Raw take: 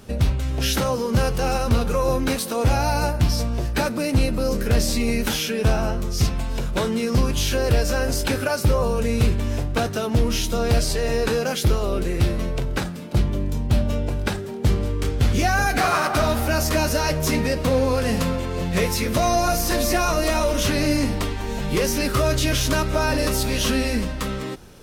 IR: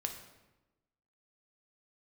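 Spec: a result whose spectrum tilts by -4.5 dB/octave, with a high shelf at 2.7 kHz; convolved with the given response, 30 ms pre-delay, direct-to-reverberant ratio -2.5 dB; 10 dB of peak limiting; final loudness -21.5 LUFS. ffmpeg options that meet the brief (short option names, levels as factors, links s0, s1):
-filter_complex "[0:a]highshelf=f=2700:g=7.5,alimiter=limit=0.188:level=0:latency=1,asplit=2[s0][s1];[1:a]atrim=start_sample=2205,adelay=30[s2];[s1][s2]afir=irnorm=-1:irlink=0,volume=1.26[s3];[s0][s3]amix=inputs=2:normalize=0,volume=0.794"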